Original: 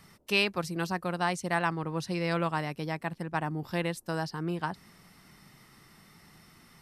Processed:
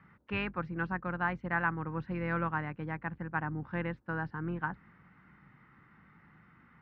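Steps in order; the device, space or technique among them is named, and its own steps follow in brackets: sub-octave bass pedal (octave divider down 2 oct, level -4 dB; cabinet simulation 62–2100 Hz, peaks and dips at 400 Hz -7 dB, 650 Hz -9 dB, 1.5 kHz +6 dB); trim -2.5 dB

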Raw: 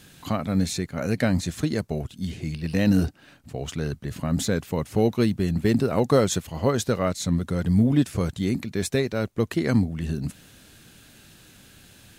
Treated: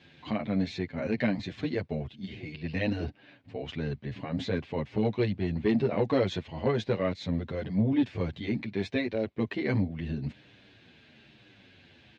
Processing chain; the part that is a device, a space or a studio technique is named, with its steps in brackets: barber-pole flanger into a guitar amplifier (endless flanger 8.8 ms -1.1 Hz; saturation -15.5 dBFS, distortion -19 dB; cabinet simulation 100–3800 Hz, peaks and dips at 170 Hz -6 dB, 1.3 kHz -8 dB, 2.2 kHz +4 dB)

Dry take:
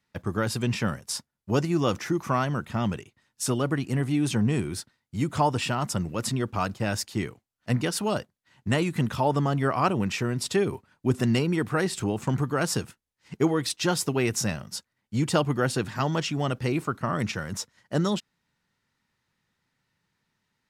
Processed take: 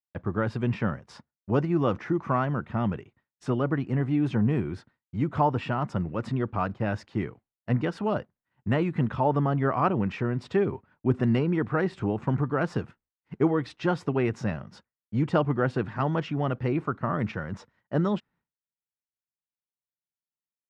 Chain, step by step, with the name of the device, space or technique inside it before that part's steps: hearing-loss simulation (low-pass 1.8 kHz 12 dB/octave; expander -54 dBFS)

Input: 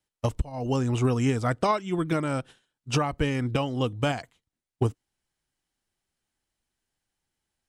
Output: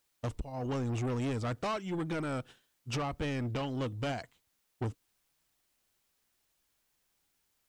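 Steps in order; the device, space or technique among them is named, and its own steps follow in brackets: compact cassette (saturation -27 dBFS, distortion -8 dB; low-pass 8.5 kHz 12 dB/octave; wow and flutter; white noise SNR 40 dB); trim -3 dB

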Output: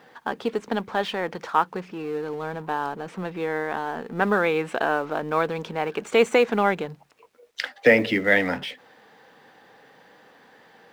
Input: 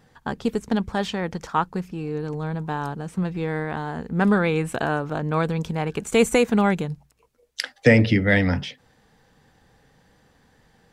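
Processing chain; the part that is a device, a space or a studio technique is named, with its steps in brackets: phone line with mismatched companding (band-pass 360–3500 Hz; companding laws mixed up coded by mu); trim +1.5 dB

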